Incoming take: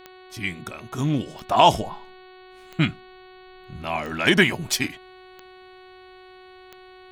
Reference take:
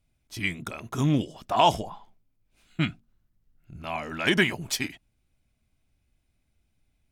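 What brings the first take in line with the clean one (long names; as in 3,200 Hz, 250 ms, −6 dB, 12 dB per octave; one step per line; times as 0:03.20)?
click removal
hum removal 370.6 Hz, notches 12
level correction −5 dB, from 0:01.26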